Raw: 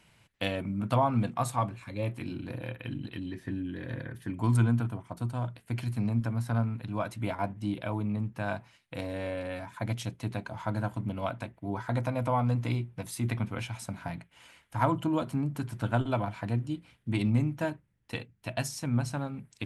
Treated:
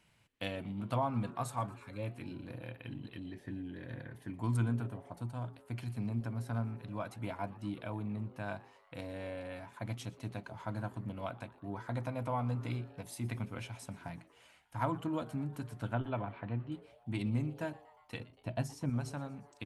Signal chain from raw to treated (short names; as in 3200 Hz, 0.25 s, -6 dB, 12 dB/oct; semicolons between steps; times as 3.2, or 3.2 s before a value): 15.93–16.72 LPF 3200 Hz 24 dB/oct; 18.2–18.9 tilt shelf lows +6.5 dB, about 1100 Hz; frequency-shifting echo 0.119 s, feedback 63%, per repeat +150 Hz, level -21.5 dB; gain -7.5 dB